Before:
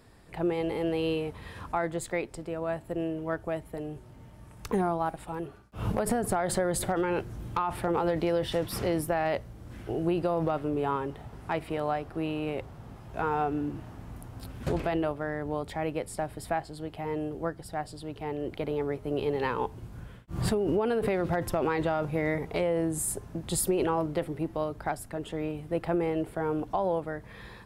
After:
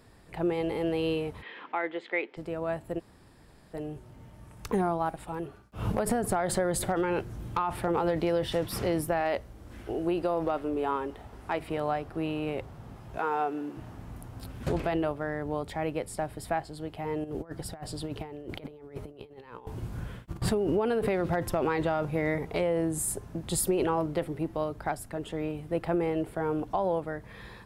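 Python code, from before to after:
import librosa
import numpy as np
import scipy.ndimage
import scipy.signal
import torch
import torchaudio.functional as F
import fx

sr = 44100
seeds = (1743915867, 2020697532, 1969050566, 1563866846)

y = fx.cabinet(x, sr, low_hz=290.0, low_slope=24, high_hz=3500.0, hz=(630.0, 1100.0, 2100.0, 3100.0), db=(-6, -3, 7, 6), at=(1.41, 2.36), fade=0.02)
y = fx.peak_eq(y, sr, hz=140.0, db=-14.5, octaves=0.48, at=(9.2, 11.6))
y = fx.highpass(y, sr, hz=320.0, slope=12, at=(13.18, 13.77))
y = fx.over_compress(y, sr, threshold_db=-38.0, ratio=-0.5, at=(17.24, 20.42))
y = fx.edit(y, sr, fx.room_tone_fill(start_s=2.99, length_s=0.75, crossfade_s=0.02), tone=tone)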